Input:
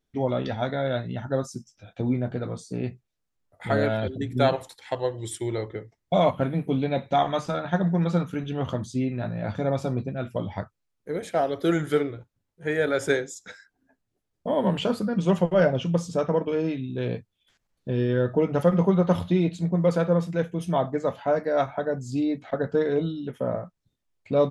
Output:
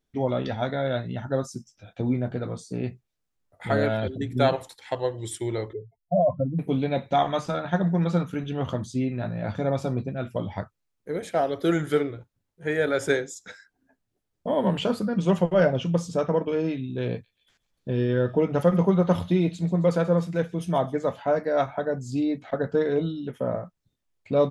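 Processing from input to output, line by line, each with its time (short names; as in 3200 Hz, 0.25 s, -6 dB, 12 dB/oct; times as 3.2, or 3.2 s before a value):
5.73–6.59 spectral contrast raised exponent 3
17.1–21.22 thin delay 0.134 s, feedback 54%, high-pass 3900 Hz, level -14 dB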